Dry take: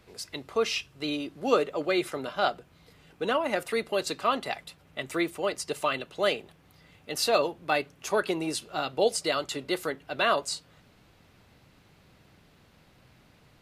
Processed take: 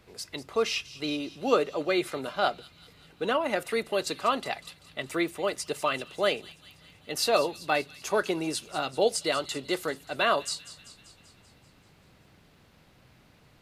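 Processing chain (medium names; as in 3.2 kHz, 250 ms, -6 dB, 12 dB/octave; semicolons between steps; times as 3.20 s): feedback echo behind a high-pass 194 ms, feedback 62%, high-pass 3.3 kHz, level -13 dB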